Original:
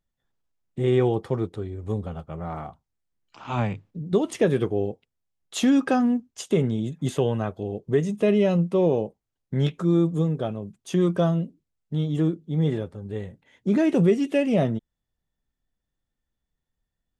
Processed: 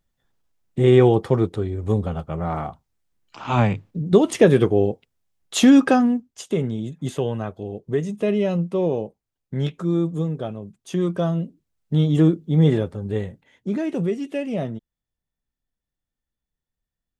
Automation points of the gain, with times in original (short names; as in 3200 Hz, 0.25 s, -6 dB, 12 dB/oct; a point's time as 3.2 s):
5.83 s +7 dB
6.28 s -1 dB
11.22 s -1 dB
11.94 s +7 dB
13.17 s +7 dB
13.8 s -4.5 dB